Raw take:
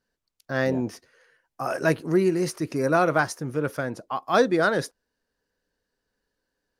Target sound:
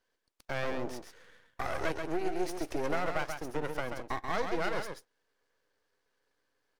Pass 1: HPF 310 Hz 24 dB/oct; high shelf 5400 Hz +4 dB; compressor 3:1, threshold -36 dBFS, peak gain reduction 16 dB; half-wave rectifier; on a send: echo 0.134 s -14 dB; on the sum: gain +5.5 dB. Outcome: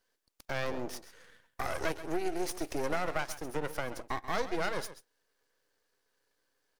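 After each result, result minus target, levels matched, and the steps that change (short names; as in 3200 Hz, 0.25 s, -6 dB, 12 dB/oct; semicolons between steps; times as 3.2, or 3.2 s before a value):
echo-to-direct -8 dB; 8000 Hz band +5.5 dB
change: echo 0.134 s -6 dB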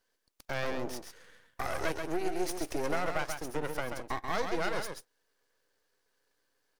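8000 Hz band +5.5 dB
change: high shelf 5400 Hz -6.5 dB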